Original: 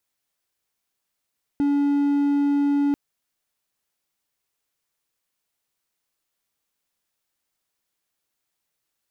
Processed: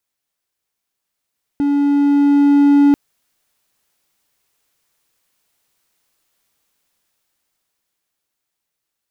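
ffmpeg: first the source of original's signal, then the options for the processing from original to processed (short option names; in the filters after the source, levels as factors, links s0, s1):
-f lavfi -i "aevalsrc='0.168*(1-4*abs(mod(285*t+0.25,1)-0.5))':d=1.34:s=44100"
-af "dynaudnorm=f=200:g=21:m=3.98"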